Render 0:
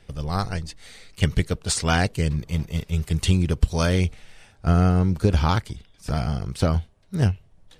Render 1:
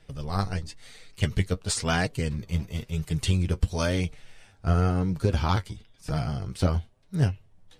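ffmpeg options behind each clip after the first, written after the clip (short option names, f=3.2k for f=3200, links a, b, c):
-af "flanger=delay=6.2:depth=4.9:regen=36:speed=0.98:shape=triangular"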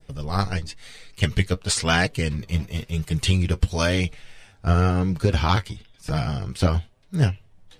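-af "adynamicequalizer=threshold=0.00708:dfrequency=2600:dqfactor=0.71:tfrequency=2600:tqfactor=0.71:attack=5:release=100:ratio=0.375:range=2.5:mode=boostabove:tftype=bell,volume=3.5dB"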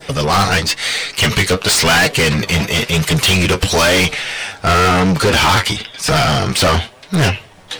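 -filter_complex "[0:a]asplit=2[a][b];[b]highpass=f=720:p=1,volume=35dB,asoftclip=type=tanh:threshold=-5dB[c];[a][c]amix=inputs=2:normalize=0,lowpass=f=7k:p=1,volume=-6dB"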